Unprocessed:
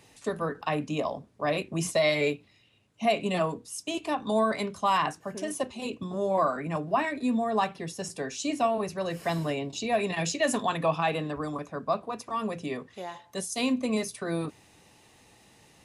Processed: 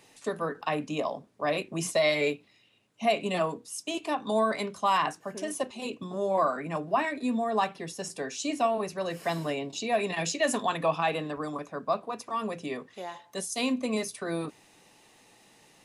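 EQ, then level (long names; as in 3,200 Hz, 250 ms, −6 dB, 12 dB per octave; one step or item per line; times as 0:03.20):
parametric band 70 Hz −15 dB 1.5 octaves
0.0 dB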